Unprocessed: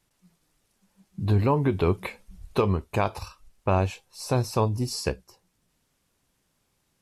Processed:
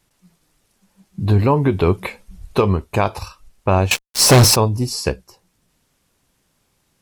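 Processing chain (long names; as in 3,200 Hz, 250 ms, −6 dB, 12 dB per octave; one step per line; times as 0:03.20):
0:03.91–0:04.56: fuzz pedal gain 35 dB, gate −44 dBFS
level +7 dB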